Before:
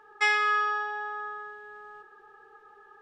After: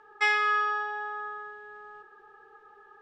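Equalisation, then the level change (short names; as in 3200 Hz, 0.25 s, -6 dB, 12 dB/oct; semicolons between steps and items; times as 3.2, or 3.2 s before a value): air absorption 51 m; 0.0 dB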